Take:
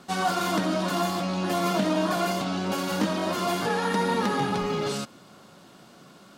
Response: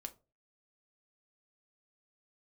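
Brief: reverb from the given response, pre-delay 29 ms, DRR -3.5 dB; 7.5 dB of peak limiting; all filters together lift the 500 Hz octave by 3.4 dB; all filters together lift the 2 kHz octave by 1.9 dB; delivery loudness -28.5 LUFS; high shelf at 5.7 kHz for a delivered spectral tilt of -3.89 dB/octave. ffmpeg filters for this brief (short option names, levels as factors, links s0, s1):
-filter_complex "[0:a]equalizer=f=500:t=o:g=4.5,equalizer=f=2000:t=o:g=3,highshelf=f=5700:g=-6.5,alimiter=limit=0.133:level=0:latency=1,asplit=2[s0][s1];[1:a]atrim=start_sample=2205,adelay=29[s2];[s1][s2]afir=irnorm=-1:irlink=0,volume=2.37[s3];[s0][s3]amix=inputs=2:normalize=0,volume=0.422"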